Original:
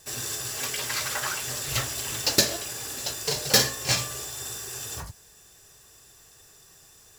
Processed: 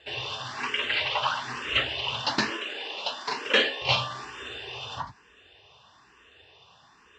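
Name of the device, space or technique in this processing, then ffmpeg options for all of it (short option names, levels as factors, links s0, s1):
barber-pole phaser into a guitar amplifier: -filter_complex "[0:a]asplit=2[s0][s1];[s1]afreqshift=1.1[s2];[s0][s2]amix=inputs=2:normalize=1,asoftclip=type=tanh:threshold=0.168,highpass=89,equalizer=f=110:t=q:w=4:g=-5,equalizer=f=160:t=q:w=4:g=-9,equalizer=f=360:t=q:w=4:g=-3,equalizer=f=980:t=q:w=4:g=8,equalizer=f=2900:t=q:w=4:g=9,lowpass=f=3700:w=0.5412,lowpass=f=3700:w=1.3066,asettb=1/sr,asplit=3[s3][s4][s5];[s3]atrim=end=2.504[s6];[s4]atrim=start=2.5:end=3.82,asetpts=PTS-STARTPTS,afade=t=in:d=0.004:c=qsin,afade=t=out:st=1.316:d=0.004:c=qsin,highpass=f=220:w=0.5412,highpass=f=220:w=1.3066[s7];[s5]atrim=start=3.816[s8];[s6][s7]acrossfade=d=0.004:c1=hsin:c2=qsin[s9];[s9][s8]acrossfade=d=0.004:c1=qsin:c2=hsin,volume=1.88"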